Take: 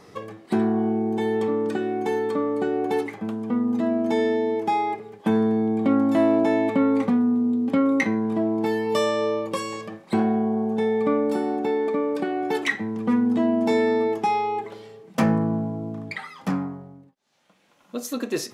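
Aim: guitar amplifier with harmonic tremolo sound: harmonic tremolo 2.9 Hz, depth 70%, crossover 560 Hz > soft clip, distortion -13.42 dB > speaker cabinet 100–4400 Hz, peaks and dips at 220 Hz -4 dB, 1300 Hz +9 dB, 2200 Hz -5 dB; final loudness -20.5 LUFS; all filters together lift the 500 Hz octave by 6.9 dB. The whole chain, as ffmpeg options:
-filter_complex "[0:a]equalizer=f=500:t=o:g=8.5,acrossover=split=560[a][b];[a]aeval=exprs='val(0)*(1-0.7/2+0.7/2*cos(2*PI*2.9*n/s))':c=same[c];[b]aeval=exprs='val(0)*(1-0.7/2-0.7/2*cos(2*PI*2.9*n/s))':c=same[d];[c][d]amix=inputs=2:normalize=0,asoftclip=threshold=-18.5dB,highpass=100,equalizer=f=220:t=q:w=4:g=-4,equalizer=f=1.3k:t=q:w=4:g=9,equalizer=f=2.2k:t=q:w=4:g=-5,lowpass=f=4.4k:w=0.5412,lowpass=f=4.4k:w=1.3066,volume=5.5dB"

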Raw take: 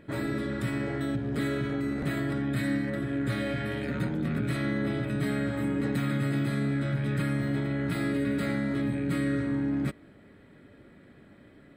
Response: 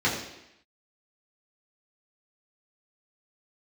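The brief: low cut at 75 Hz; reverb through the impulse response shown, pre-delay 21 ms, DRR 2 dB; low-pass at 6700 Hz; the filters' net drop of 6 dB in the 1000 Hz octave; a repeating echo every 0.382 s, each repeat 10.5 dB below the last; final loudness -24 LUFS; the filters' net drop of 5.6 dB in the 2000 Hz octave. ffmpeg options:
-filter_complex "[0:a]highpass=75,lowpass=6.7k,equalizer=f=1k:t=o:g=-7,equalizer=f=2k:t=o:g=-4.5,aecho=1:1:382|764|1146:0.299|0.0896|0.0269,asplit=2[a][b];[1:a]atrim=start_sample=2205,adelay=21[c];[b][c]afir=irnorm=-1:irlink=0,volume=-16dB[d];[a][d]amix=inputs=2:normalize=0,volume=3dB"

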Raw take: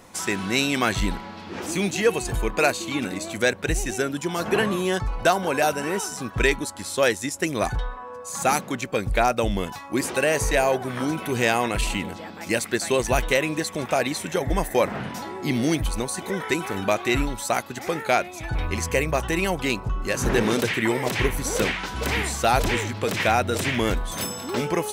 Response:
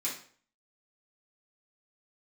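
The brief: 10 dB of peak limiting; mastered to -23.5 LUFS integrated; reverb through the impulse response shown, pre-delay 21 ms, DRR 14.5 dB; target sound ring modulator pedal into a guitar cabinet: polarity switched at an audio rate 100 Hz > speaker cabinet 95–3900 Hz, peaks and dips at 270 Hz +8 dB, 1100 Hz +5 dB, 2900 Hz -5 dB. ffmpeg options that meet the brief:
-filter_complex "[0:a]alimiter=limit=-17dB:level=0:latency=1,asplit=2[a][b];[1:a]atrim=start_sample=2205,adelay=21[c];[b][c]afir=irnorm=-1:irlink=0,volume=-18.5dB[d];[a][d]amix=inputs=2:normalize=0,aeval=exprs='val(0)*sgn(sin(2*PI*100*n/s))':c=same,highpass=95,equalizer=f=270:t=q:w=4:g=8,equalizer=f=1.1k:t=q:w=4:g=5,equalizer=f=2.9k:t=q:w=4:g=-5,lowpass=f=3.9k:w=0.5412,lowpass=f=3.9k:w=1.3066,volume=3.5dB"

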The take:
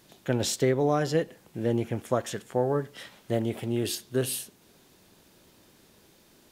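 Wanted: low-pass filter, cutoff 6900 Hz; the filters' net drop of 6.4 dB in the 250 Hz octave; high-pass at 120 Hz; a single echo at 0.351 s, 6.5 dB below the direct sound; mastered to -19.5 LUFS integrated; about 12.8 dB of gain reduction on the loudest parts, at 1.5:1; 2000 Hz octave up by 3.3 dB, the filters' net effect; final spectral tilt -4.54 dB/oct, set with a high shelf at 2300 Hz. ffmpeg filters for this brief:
-af "highpass=120,lowpass=6.9k,equalizer=f=250:t=o:g=-8.5,equalizer=f=2k:t=o:g=8.5,highshelf=f=2.3k:g=-9,acompressor=threshold=-59dB:ratio=1.5,aecho=1:1:351:0.473,volume=23.5dB"

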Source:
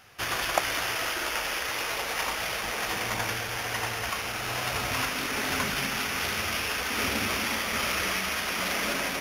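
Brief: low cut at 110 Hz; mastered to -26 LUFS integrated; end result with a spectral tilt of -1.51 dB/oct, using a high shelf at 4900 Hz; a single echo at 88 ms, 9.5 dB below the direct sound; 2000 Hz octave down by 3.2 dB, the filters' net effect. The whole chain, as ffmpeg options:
-af "highpass=110,equalizer=f=2k:t=o:g=-5.5,highshelf=f=4.9k:g=7.5,aecho=1:1:88:0.335,volume=1dB"

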